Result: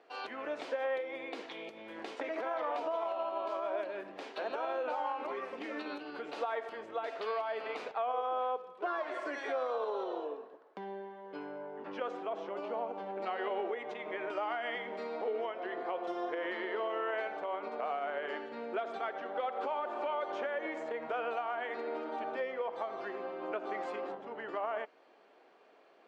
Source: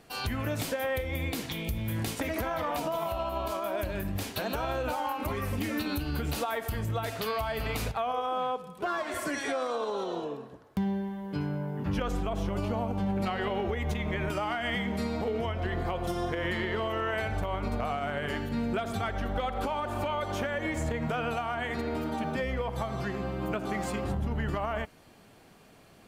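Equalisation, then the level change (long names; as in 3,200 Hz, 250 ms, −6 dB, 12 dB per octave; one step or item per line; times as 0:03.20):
high-pass filter 380 Hz 24 dB per octave
head-to-tape spacing loss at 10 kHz 41 dB
high-shelf EQ 3,700 Hz +8 dB
0.0 dB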